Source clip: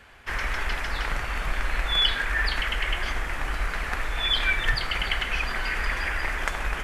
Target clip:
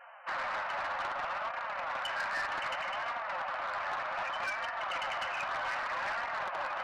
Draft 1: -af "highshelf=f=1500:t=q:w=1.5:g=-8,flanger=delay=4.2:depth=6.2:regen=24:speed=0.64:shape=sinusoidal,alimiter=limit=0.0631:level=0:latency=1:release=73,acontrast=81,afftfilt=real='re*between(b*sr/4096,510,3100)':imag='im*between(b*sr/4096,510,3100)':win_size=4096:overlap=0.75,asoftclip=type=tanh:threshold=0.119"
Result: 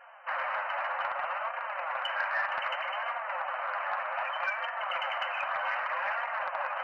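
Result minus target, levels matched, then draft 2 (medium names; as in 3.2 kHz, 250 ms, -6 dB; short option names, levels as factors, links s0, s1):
saturation: distortion -15 dB
-af "highshelf=f=1500:t=q:w=1.5:g=-8,flanger=delay=4.2:depth=6.2:regen=24:speed=0.64:shape=sinusoidal,alimiter=limit=0.0631:level=0:latency=1:release=73,acontrast=81,afftfilt=real='re*between(b*sr/4096,510,3100)':imag='im*between(b*sr/4096,510,3100)':win_size=4096:overlap=0.75,asoftclip=type=tanh:threshold=0.0316"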